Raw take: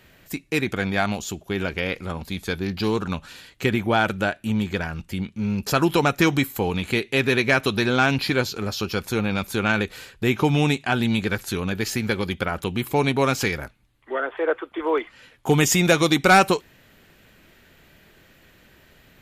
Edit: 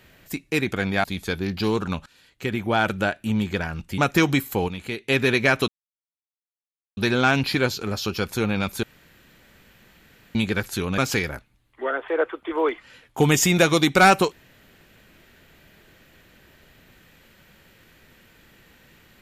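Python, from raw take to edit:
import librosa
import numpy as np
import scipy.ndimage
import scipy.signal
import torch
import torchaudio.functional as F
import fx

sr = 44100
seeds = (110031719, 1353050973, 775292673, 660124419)

y = fx.edit(x, sr, fx.cut(start_s=1.04, length_s=1.2),
    fx.fade_in_from(start_s=3.26, length_s=0.84, floor_db=-19.5),
    fx.cut(start_s=5.18, length_s=0.84),
    fx.clip_gain(start_s=6.72, length_s=0.4, db=-7.5),
    fx.insert_silence(at_s=7.72, length_s=1.29),
    fx.room_tone_fill(start_s=9.58, length_s=1.52),
    fx.cut(start_s=11.73, length_s=1.54), tone=tone)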